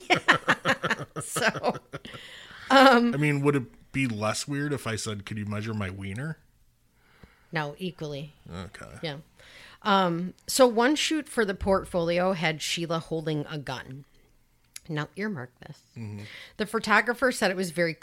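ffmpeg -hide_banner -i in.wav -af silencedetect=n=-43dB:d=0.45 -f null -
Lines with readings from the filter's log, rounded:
silence_start: 6.34
silence_end: 7.23 | silence_duration: 0.90
silence_start: 14.02
silence_end: 14.76 | silence_duration: 0.74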